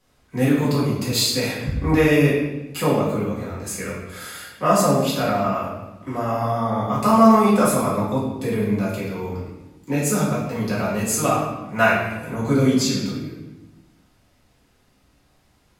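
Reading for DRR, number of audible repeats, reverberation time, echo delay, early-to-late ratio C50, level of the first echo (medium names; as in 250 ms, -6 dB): -8.5 dB, no echo, 1.0 s, no echo, 2.0 dB, no echo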